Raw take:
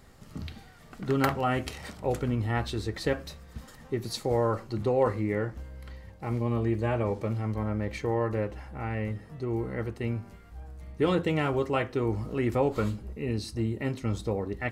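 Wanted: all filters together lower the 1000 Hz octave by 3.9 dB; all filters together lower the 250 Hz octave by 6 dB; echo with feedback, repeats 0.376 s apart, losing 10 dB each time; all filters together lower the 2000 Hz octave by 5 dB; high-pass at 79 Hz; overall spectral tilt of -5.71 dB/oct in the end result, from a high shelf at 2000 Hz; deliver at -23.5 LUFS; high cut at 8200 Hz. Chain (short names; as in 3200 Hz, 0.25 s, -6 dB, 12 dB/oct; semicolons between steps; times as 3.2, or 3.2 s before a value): HPF 79 Hz; LPF 8200 Hz; bell 250 Hz -8 dB; bell 1000 Hz -4 dB; high shelf 2000 Hz +4.5 dB; bell 2000 Hz -7.5 dB; feedback echo 0.376 s, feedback 32%, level -10 dB; gain +9.5 dB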